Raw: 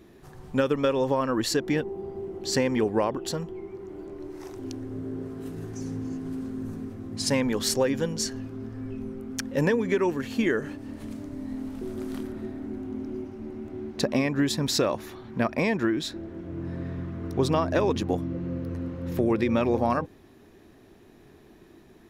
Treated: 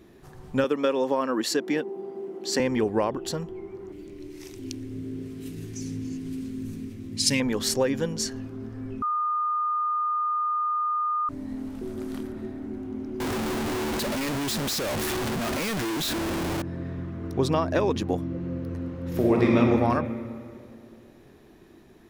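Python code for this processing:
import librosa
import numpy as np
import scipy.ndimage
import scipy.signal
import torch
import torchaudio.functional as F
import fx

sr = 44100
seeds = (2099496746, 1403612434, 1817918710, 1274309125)

y = fx.highpass(x, sr, hz=200.0, slope=24, at=(0.64, 2.6))
y = fx.curve_eq(y, sr, hz=(290.0, 760.0, 1500.0, 2300.0), db=(0, -13, -7, 6), at=(3.92, 7.4))
y = fx.clip_1bit(y, sr, at=(13.2, 16.62))
y = fx.reverb_throw(y, sr, start_s=19.09, length_s=0.48, rt60_s=2.5, drr_db=-3.5)
y = fx.edit(y, sr, fx.bleep(start_s=9.02, length_s=2.27, hz=1220.0, db=-23.0), tone=tone)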